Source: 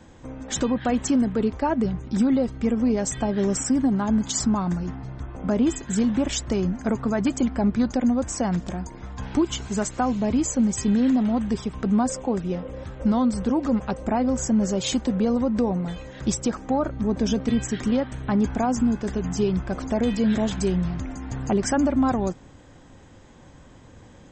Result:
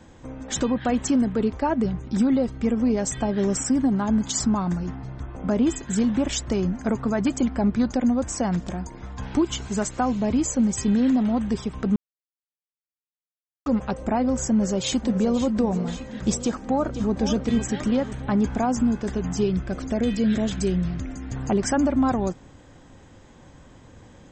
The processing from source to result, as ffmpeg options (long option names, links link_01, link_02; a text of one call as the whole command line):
ffmpeg -i in.wav -filter_complex "[0:a]asplit=2[link_01][link_02];[link_02]afade=type=in:start_time=14.5:duration=0.01,afade=type=out:start_time=15.43:duration=0.01,aecho=0:1:530|1060|1590|2120|2650|3180|3710|4240:0.251189|0.163273|0.106127|0.0689827|0.0448387|0.0291452|0.0189444|0.0123138[link_03];[link_01][link_03]amix=inputs=2:normalize=0,asplit=2[link_04][link_05];[link_05]afade=type=in:start_time=16.44:duration=0.01,afade=type=out:start_time=17.21:duration=0.01,aecho=0:1:500|1000|1500|2000|2500|3000:0.334965|0.167483|0.0837414|0.0418707|0.0209353|0.0104677[link_06];[link_04][link_06]amix=inputs=2:normalize=0,asettb=1/sr,asplit=3[link_07][link_08][link_09];[link_07]atrim=end=19.464[link_10];[link_08]atrim=start=19.46:end=21.36,asetpts=PTS-STARTPTS,afade=type=in:duration=0.004:curve=qsin,afade=type=out:start_time=1.896:duration=0.004:curve=qsin,equalizer=frequency=920:width=2:gain=-8[link_11];[link_09]atrim=start=21.356[link_12];[link_10][link_11]acrossfade=duration=0.004:curve1=hsin:curve2=qsin[link_13];[link_13][link_12]acrossfade=duration=0.004:curve1=qsin:curve2=hsin,asplit=3[link_14][link_15][link_16];[link_14]atrim=end=11.96,asetpts=PTS-STARTPTS,afade=type=out:start_time=11.956:duration=0.004:curve=hsin[link_17];[link_15]atrim=start=11.96:end=13.66,asetpts=PTS-STARTPTS,volume=0[link_18];[link_16]atrim=start=13.66,asetpts=PTS-STARTPTS,afade=type=in:duration=0.004:curve=hsin[link_19];[link_17][link_18][link_19]concat=n=3:v=0:a=1" out.wav